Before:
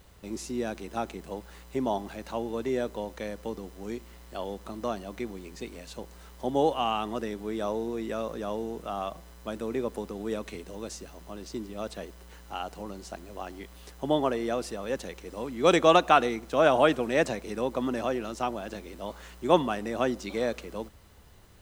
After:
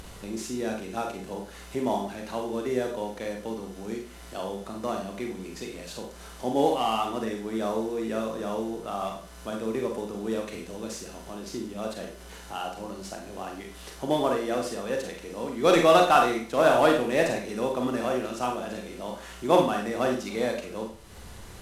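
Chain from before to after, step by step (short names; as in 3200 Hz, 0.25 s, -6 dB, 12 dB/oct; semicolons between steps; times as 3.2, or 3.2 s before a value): CVSD 64 kbps; upward compressor, threshold -35 dBFS; Schroeder reverb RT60 0.41 s, combs from 32 ms, DRR 1.5 dB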